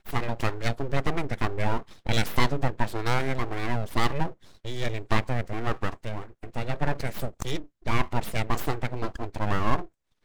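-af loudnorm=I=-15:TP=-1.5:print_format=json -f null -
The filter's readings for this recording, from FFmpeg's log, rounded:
"input_i" : "-30.4",
"input_tp" : "-6.2",
"input_lra" : "2.6",
"input_thresh" : "-40.4",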